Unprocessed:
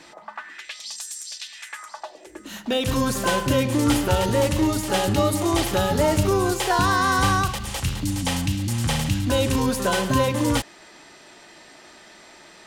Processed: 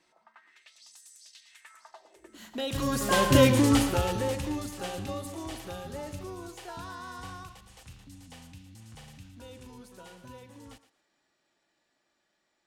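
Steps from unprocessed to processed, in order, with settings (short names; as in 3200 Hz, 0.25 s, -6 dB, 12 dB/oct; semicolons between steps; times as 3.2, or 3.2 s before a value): Doppler pass-by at 3.42, 16 m/s, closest 3.5 m; thinning echo 0.117 s, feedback 22%, high-pass 420 Hz, level -13 dB; gain +2 dB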